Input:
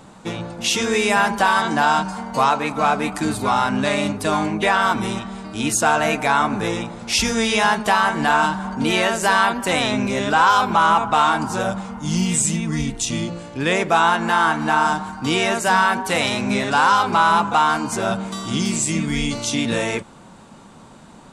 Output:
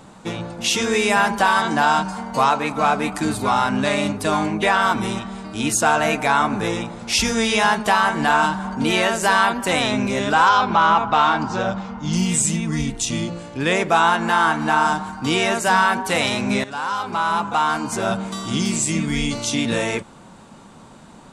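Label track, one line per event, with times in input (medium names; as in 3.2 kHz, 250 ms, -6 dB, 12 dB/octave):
10.490000	12.130000	low-pass 5.7 kHz 24 dB/octave
16.640000	18.110000	fade in, from -13.5 dB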